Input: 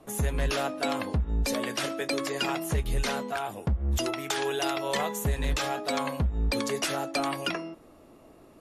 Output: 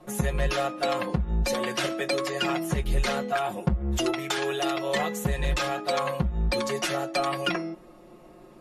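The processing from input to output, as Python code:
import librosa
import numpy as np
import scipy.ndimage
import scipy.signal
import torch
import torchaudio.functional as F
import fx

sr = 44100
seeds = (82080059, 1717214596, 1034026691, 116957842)

y = fx.high_shelf(x, sr, hz=6600.0, db=-6.5)
y = y + 1.0 * np.pad(y, (int(5.6 * sr / 1000.0), 0))[:len(y)]
y = fx.rider(y, sr, range_db=10, speed_s=0.5)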